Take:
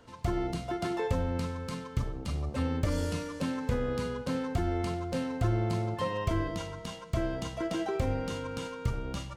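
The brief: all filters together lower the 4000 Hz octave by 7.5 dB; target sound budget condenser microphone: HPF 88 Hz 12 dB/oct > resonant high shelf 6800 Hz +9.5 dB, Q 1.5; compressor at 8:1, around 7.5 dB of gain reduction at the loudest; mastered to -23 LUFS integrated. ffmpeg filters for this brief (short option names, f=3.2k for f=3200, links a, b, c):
-af "equalizer=f=4k:t=o:g=-8.5,acompressor=threshold=-33dB:ratio=8,highpass=88,highshelf=f=6.8k:t=q:w=1.5:g=9.5,volume=16dB"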